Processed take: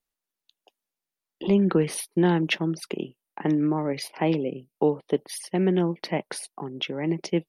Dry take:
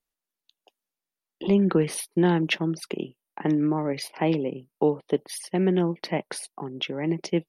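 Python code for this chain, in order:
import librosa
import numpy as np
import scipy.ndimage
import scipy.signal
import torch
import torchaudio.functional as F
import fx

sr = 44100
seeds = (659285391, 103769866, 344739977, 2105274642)

y = fx.spec_box(x, sr, start_s=4.44, length_s=0.3, low_hz=770.0, high_hz=2100.0, gain_db=-20)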